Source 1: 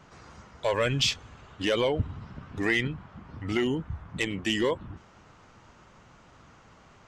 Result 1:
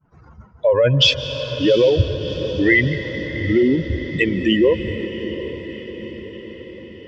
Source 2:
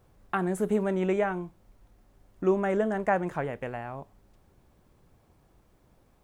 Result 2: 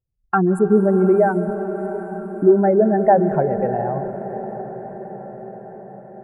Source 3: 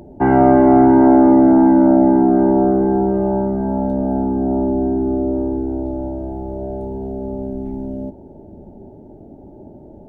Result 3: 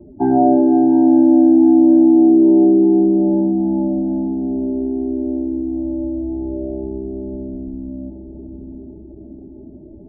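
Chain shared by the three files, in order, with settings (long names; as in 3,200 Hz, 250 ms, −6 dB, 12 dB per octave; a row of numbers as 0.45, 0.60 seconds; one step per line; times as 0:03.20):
expanding power law on the bin magnitudes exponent 2.2
downward expander −43 dBFS
notch filter 1,200 Hz, Q 10
feedback delay with all-pass diffusion 732 ms, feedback 62%, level −13 dB
comb and all-pass reverb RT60 4.8 s, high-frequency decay 0.9×, pre-delay 120 ms, DRR 10.5 dB
normalise the peak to −3 dBFS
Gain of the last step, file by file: +11.5, +12.0, −1.0 decibels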